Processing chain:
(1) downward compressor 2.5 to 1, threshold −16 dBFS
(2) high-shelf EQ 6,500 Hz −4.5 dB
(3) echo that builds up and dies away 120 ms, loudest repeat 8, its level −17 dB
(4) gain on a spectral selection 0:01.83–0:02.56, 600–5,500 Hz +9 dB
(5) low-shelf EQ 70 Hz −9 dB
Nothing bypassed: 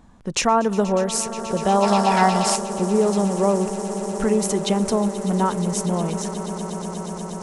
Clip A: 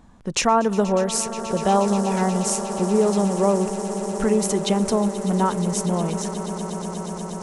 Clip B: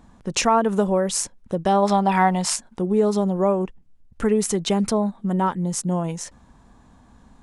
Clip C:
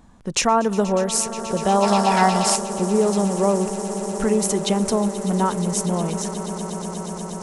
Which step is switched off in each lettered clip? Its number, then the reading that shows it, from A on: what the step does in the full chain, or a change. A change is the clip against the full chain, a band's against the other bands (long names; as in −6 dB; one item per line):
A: 4, 2 kHz band −3.0 dB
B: 3, change in momentary loudness spread −3 LU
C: 2, 8 kHz band +2.5 dB